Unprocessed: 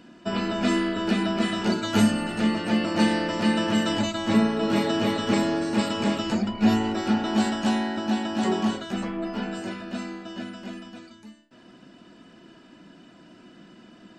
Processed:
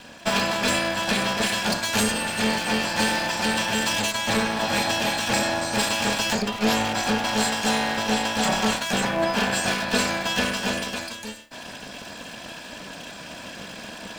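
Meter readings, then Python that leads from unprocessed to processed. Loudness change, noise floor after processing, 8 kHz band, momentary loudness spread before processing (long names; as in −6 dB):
+2.0 dB, −40 dBFS, +13.0 dB, 12 LU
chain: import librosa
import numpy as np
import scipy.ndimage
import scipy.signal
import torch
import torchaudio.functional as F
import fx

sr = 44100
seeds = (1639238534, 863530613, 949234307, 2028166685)

p1 = fx.lower_of_two(x, sr, delay_ms=1.2)
p2 = 10.0 ** (-21.0 / 20.0) * (np.abs((p1 / 10.0 ** (-21.0 / 20.0) + 3.0) % 4.0 - 2.0) - 1.0)
p3 = p1 + F.gain(torch.from_numpy(p2), -8.0).numpy()
p4 = fx.tilt_eq(p3, sr, slope=2.5)
p5 = fx.rider(p4, sr, range_db=10, speed_s=0.5)
y = F.gain(torch.from_numpy(p5), 2.5).numpy()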